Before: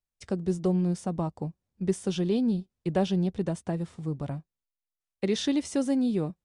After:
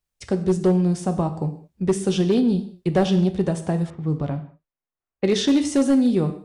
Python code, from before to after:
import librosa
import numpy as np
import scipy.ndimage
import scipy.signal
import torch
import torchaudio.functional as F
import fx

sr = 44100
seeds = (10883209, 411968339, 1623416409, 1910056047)

y = fx.rev_gated(x, sr, seeds[0], gate_ms=230, shape='falling', drr_db=7.5)
y = fx.env_lowpass(y, sr, base_hz=1500.0, full_db=-21.5, at=(3.9, 5.59))
y = np.clip(y, -10.0 ** (-19.0 / 20.0), 10.0 ** (-19.0 / 20.0))
y = y * 10.0 ** (7.0 / 20.0)